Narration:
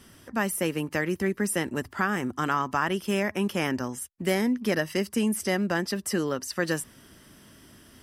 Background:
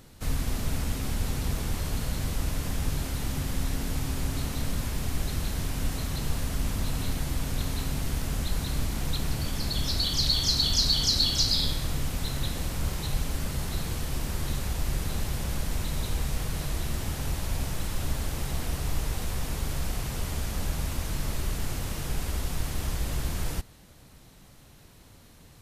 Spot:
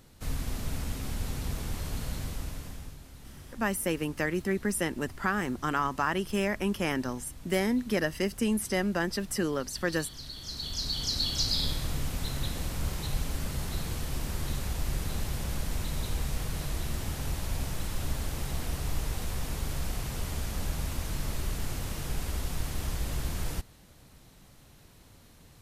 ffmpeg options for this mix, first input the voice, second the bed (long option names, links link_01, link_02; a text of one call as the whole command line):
ffmpeg -i stem1.wav -i stem2.wav -filter_complex "[0:a]adelay=3250,volume=-2.5dB[link_01];[1:a]volume=11dB,afade=type=out:start_time=2.13:duration=0.84:silence=0.211349,afade=type=in:start_time=10.36:duration=1.36:silence=0.16788[link_02];[link_01][link_02]amix=inputs=2:normalize=0" out.wav